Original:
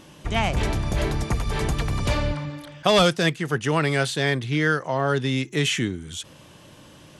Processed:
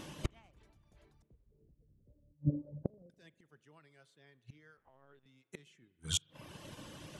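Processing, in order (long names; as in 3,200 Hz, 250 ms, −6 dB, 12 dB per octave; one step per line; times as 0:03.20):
reverb reduction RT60 0.64 s
0:01.22–0:03.10: Chebyshev low-pass filter 510 Hz, order 4
gate with flip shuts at −25 dBFS, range −35 dB
spring reverb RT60 1.9 s, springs 40 ms, chirp 50 ms, DRR 17.5 dB
0:04.77–0:05.26: linear-prediction vocoder at 8 kHz pitch kept
expander for the loud parts 1.5 to 1, over −59 dBFS
level +7.5 dB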